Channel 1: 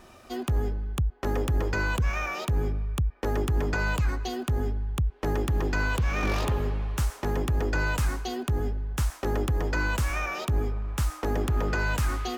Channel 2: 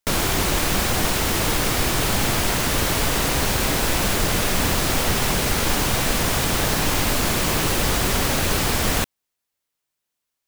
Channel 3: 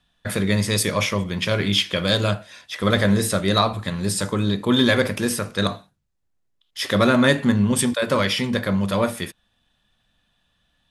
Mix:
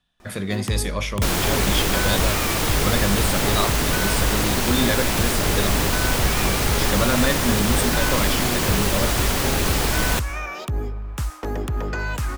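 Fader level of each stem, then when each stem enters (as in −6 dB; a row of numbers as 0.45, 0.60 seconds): +0.5, −1.0, −5.5 decibels; 0.20, 1.15, 0.00 seconds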